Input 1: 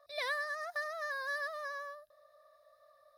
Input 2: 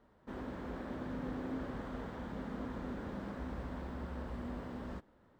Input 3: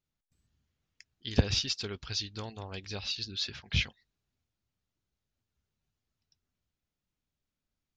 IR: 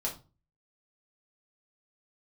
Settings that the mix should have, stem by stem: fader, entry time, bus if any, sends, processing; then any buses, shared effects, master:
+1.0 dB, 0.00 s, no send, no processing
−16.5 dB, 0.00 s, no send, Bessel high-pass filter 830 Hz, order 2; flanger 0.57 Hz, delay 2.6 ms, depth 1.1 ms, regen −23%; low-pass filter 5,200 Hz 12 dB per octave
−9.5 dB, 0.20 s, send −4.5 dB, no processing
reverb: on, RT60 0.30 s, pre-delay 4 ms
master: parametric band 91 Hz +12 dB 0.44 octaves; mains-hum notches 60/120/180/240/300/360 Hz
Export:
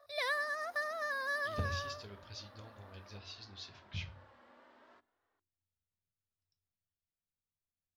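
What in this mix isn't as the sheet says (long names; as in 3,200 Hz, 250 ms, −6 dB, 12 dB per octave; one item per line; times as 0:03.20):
stem 2 −16.5 dB → −5.5 dB
stem 3 −9.5 dB → −19.5 dB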